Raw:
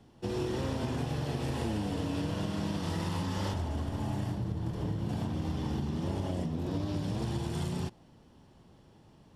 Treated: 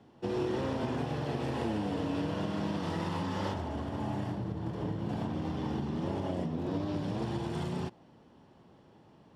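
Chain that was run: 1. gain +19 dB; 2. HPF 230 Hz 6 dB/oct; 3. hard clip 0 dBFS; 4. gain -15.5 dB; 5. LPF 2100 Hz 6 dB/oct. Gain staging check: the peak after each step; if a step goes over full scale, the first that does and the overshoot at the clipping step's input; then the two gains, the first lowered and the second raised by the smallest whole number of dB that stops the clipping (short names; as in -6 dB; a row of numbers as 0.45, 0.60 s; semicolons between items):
-0.5, -3.5, -3.5, -19.0, -19.5 dBFS; no overload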